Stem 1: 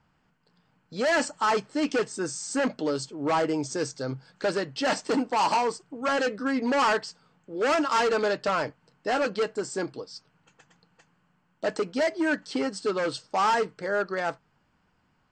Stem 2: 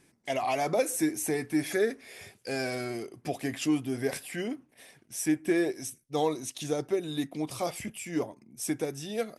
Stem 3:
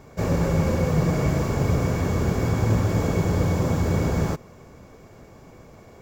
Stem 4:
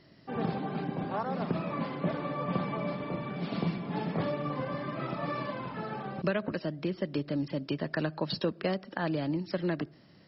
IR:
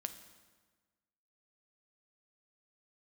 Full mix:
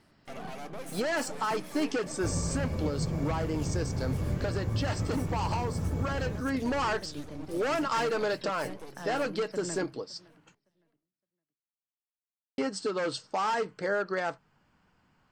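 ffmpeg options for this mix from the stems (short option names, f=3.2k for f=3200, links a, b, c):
-filter_complex "[0:a]acompressor=threshold=-25dB:ratio=6,volume=1dB,asplit=3[a][b][c];[a]atrim=end=10.55,asetpts=PTS-STARTPTS,afade=t=out:st=10.546:d=0.004:c=hsin[d];[b]atrim=start=10.55:end=12.58,asetpts=PTS-STARTPTS,volume=0[e];[c]atrim=start=12.58,asetpts=PTS-STARTPTS,afade=t=in:d=0.004:c=hsin[f];[d][e][f]concat=n=3:v=0:a=1[g];[1:a]aeval=exprs='max(val(0),0)':c=same,aeval=exprs='(tanh(14.1*val(0)+0.35)-tanh(0.35))/14.1':c=same,volume=-5dB,asplit=3[h][i][j];[i]volume=-7dB[k];[2:a]lowshelf=f=220:g=10.5,adelay=2050,volume=-13dB,asplit=2[l][m];[m]volume=-11.5dB[n];[3:a]acontrast=86,volume=-14.5dB,asplit=2[o][p];[p]volume=-21.5dB[q];[j]apad=whole_len=453112[r];[o][r]sidechaincompress=threshold=-42dB:ratio=8:attack=16:release=646[s];[k][n][q]amix=inputs=3:normalize=0,aecho=0:1:563|1126|1689:1|0.18|0.0324[t];[g][h][l][s][t]amix=inputs=5:normalize=0,alimiter=limit=-20.5dB:level=0:latency=1:release=453"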